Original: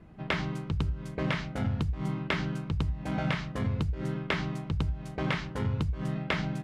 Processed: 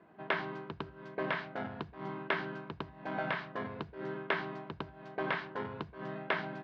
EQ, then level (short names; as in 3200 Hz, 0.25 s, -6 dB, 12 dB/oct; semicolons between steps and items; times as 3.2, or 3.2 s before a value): speaker cabinet 240–4300 Hz, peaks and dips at 390 Hz +7 dB, 680 Hz +8 dB, 1000 Hz +8 dB, 1600 Hz +9 dB; -6.5 dB